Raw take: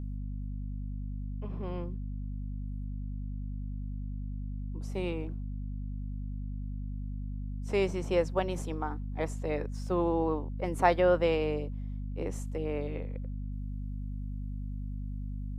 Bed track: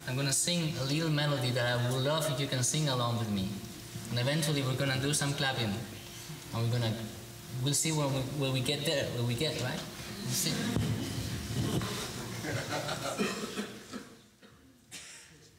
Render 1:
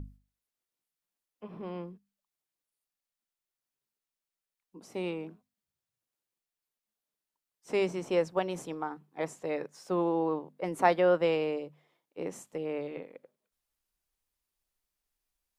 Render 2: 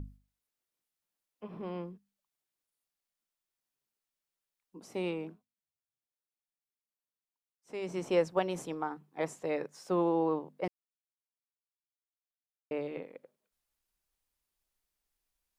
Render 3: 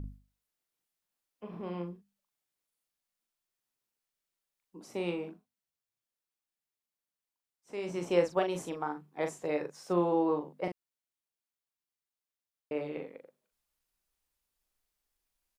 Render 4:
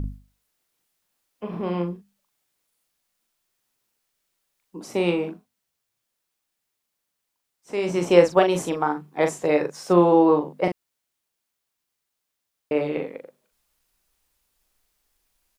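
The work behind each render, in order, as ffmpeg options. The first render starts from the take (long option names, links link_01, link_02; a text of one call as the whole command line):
ffmpeg -i in.wav -af "bandreject=frequency=50:width_type=h:width=6,bandreject=frequency=100:width_type=h:width=6,bandreject=frequency=150:width_type=h:width=6,bandreject=frequency=200:width_type=h:width=6,bandreject=frequency=250:width_type=h:width=6" out.wav
ffmpeg -i in.wav -filter_complex "[0:a]asplit=5[link_01][link_02][link_03][link_04][link_05];[link_01]atrim=end=5.45,asetpts=PTS-STARTPTS,afade=type=out:start_time=5.29:duration=0.16:silence=0.281838[link_06];[link_02]atrim=start=5.45:end=7.82,asetpts=PTS-STARTPTS,volume=-11dB[link_07];[link_03]atrim=start=7.82:end=10.68,asetpts=PTS-STARTPTS,afade=type=in:duration=0.16:silence=0.281838,afade=type=out:start_time=2.856:duration=0.004:curve=hsin[link_08];[link_04]atrim=start=10.68:end=12.71,asetpts=PTS-STARTPTS,volume=0[link_09];[link_05]atrim=start=12.71,asetpts=PTS-STARTPTS,afade=type=in:duration=0.004:curve=hsin[link_10];[link_06][link_07][link_08][link_09][link_10]concat=n=5:v=0:a=1" out.wav
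ffmpeg -i in.wav -filter_complex "[0:a]asplit=2[link_01][link_02];[link_02]adelay=40,volume=-6dB[link_03];[link_01][link_03]amix=inputs=2:normalize=0" out.wav
ffmpeg -i in.wav -af "volume=12dB" out.wav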